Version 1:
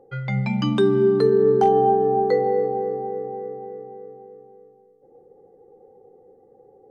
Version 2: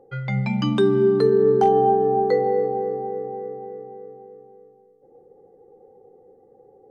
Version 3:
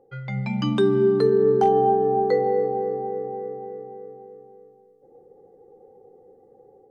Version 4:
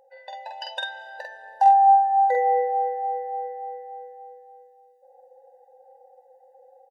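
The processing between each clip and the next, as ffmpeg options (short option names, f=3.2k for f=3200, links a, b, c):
-af anull
-af "dynaudnorm=f=340:g=3:m=5.5dB,volume=-5.5dB"
-filter_complex "[0:a]asplit=2[a][b];[b]adelay=47,volume=-3dB[c];[a][c]amix=inputs=2:normalize=0,afftfilt=real='re*eq(mod(floor(b*sr/1024/500),2),1)':imag='im*eq(mod(floor(b*sr/1024/500),2),1)':win_size=1024:overlap=0.75,volume=3dB"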